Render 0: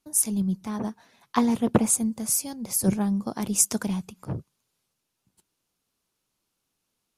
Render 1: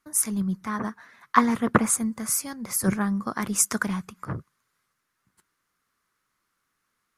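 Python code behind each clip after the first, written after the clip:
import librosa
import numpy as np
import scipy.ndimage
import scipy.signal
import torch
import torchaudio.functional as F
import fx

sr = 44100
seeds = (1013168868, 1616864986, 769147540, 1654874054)

y = fx.band_shelf(x, sr, hz=1500.0, db=13.0, octaves=1.2)
y = y * 10.0 ** (-1.0 / 20.0)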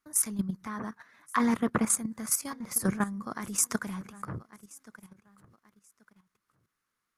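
y = fx.echo_feedback(x, sr, ms=1132, feedback_pct=27, wet_db=-21.5)
y = fx.level_steps(y, sr, step_db=12)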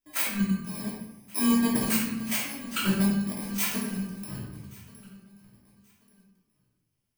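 y = fx.bit_reversed(x, sr, seeds[0], block=32)
y = fx.room_shoebox(y, sr, seeds[1], volume_m3=300.0, walls='mixed', distance_m=2.9)
y = y * 10.0 ** (-7.0 / 20.0)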